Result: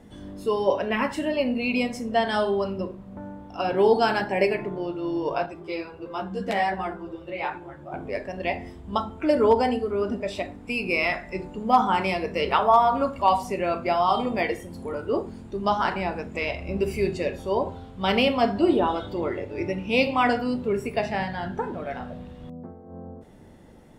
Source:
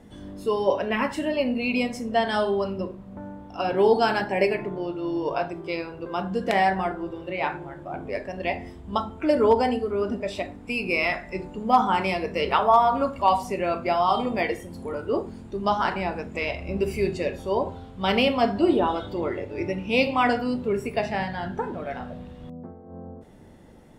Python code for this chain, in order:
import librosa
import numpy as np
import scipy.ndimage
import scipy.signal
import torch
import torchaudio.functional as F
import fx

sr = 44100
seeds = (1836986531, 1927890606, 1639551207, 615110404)

y = fx.ensemble(x, sr, at=(5.46, 7.92))